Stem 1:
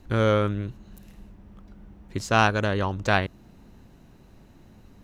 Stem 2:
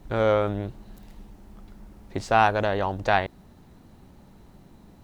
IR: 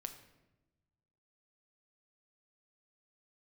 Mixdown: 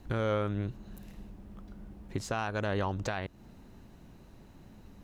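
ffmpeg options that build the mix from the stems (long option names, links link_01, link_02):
-filter_complex "[0:a]volume=-2.5dB[link_01];[1:a]volume=-10dB[link_02];[link_01][link_02]amix=inputs=2:normalize=0,alimiter=limit=-21.5dB:level=0:latency=1:release=280"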